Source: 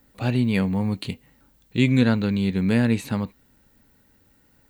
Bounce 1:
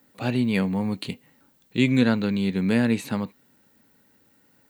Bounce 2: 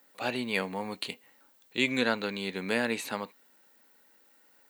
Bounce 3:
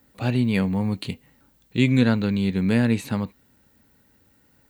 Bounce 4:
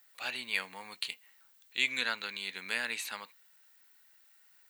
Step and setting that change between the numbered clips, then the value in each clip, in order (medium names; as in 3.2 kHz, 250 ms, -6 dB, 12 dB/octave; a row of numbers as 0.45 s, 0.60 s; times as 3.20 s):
high-pass, cutoff frequency: 150 Hz, 500 Hz, 54 Hz, 1.5 kHz